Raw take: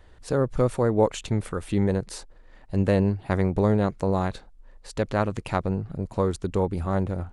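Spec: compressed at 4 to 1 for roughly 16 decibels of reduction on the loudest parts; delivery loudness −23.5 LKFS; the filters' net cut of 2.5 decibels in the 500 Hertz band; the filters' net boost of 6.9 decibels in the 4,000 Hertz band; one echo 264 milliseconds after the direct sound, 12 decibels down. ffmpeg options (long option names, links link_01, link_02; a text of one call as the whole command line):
ffmpeg -i in.wav -af "equalizer=frequency=500:width_type=o:gain=-3,equalizer=frequency=4000:width_type=o:gain=8.5,acompressor=threshold=-37dB:ratio=4,aecho=1:1:264:0.251,volume=16.5dB" out.wav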